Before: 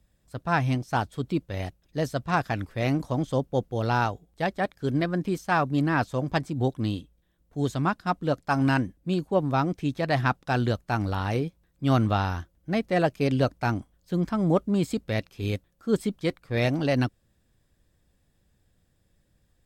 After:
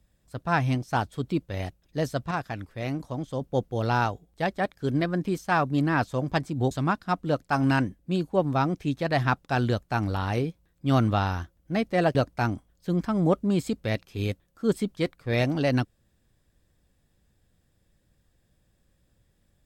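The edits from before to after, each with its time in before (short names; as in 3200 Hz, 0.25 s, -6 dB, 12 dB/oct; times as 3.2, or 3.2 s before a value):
2.31–3.41 gain -5.5 dB
6.71–7.69 cut
13.13–13.39 cut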